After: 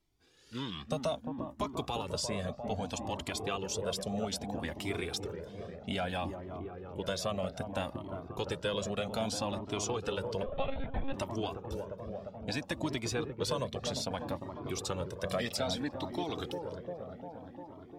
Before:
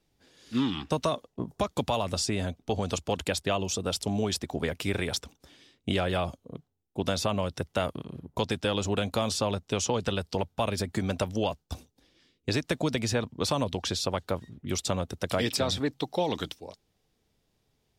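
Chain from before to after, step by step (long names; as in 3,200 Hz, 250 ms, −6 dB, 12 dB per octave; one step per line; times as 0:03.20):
dynamic equaliser 100 Hz, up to −6 dB, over −49 dBFS, Q 2.7
on a send: delay with a low-pass on its return 350 ms, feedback 75%, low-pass 1,000 Hz, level −6 dB
0:10.46–0:11.14: on the sum: one-pitch LPC vocoder at 8 kHz 270 Hz
flanger whose copies keep moving one way rising 0.62 Hz
level −2 dB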